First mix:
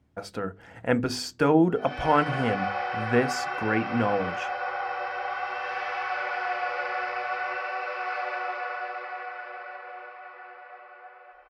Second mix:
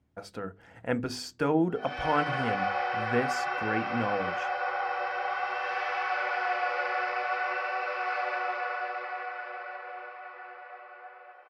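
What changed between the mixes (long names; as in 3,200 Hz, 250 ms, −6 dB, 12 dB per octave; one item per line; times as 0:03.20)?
speech −5.5 dB
background: add high-pass filter 270 Hz 24 dB per octave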